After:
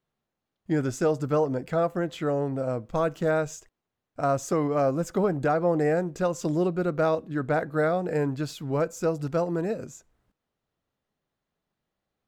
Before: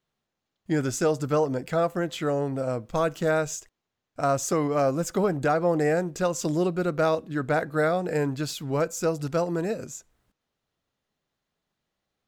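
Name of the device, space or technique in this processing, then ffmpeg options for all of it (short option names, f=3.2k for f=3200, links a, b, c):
behind a face mask: -af "highshelf=f=2.3k:g=-8"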